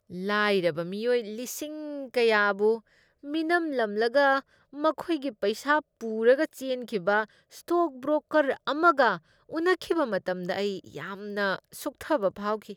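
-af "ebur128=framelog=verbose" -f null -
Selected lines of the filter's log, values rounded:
Integrated loudness:
  I:         -27.0 LUFS
  Threshold: -37.2 LUFS
Loudness range:
  LRA:         1.6 LU
  Threshold: -47.0 LUFS
  LRA low:   -27.7 LUFS
  LRA high:  -26.1 LUFS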